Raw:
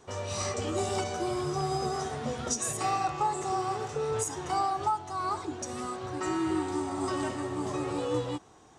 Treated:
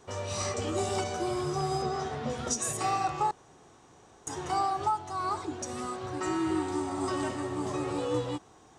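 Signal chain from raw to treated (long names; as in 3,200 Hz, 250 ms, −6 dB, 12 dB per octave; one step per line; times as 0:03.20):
0:01.82–0:02.30: low-pass filter 5,100 Hz 12 dB per octave
0:03.31–0:04.27: fill with room tone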